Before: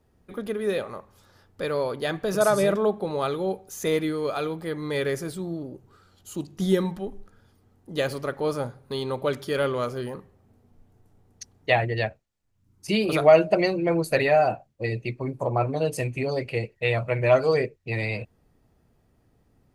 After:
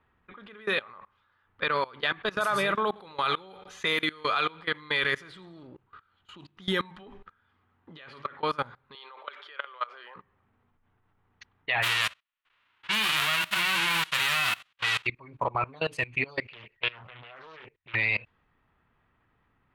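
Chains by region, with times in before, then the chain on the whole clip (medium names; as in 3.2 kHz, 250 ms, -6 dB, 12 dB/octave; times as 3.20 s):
2.87–5.67 s: treble shelf 2.9 kHz +6 dB + feedback delay 86 ms, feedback 52%, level -17 dB
7.02–8.43 s: high-pass 52 Hz 6 dB/octave + compressor with a negative ratio -31 dBFS + doubling 12 ms -10 dB
8.95–10.16 s: high-pass 490 Hz 24 dB/octave + compression 2:1, threshold -34 dBFS
11.82–15.05 s: formants flattened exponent 0.1 + peaking EQ 2.8 kHz +3 dB 0.3 oct
16.53–17.95 s: treble shelf 7.2 kHz +8.5 dB + compression 4:1, threshold -29 dBFS + loudspeaker Doppler distortion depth 0.83 ms
whole clip: level-controlled noise filter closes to 2.4 kHz, open at -19 dBFS; high-order bell 1.9 kHz +15.5 dB 2.4 oct; level held to a coarse grid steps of 22 dB; trim -4 dB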